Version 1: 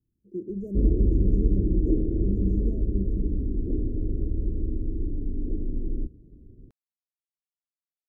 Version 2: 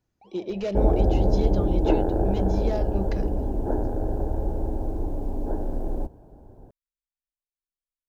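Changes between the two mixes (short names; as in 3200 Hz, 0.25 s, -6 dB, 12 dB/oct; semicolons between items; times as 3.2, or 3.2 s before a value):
first sound: unmuted; second sound: remove LPF 1100 Hz 6 dB/oct; master: remove inverse Chebyshev band-stop 810–4800 Hz, stop band 50 dB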